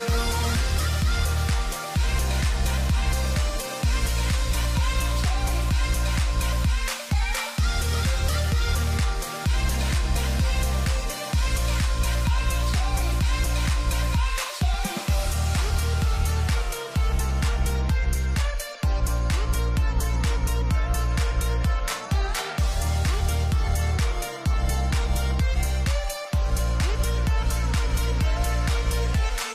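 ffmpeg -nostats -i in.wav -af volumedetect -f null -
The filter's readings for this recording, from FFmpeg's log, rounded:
mean_volume: -22.7 dB
max_volume: -12.7 dB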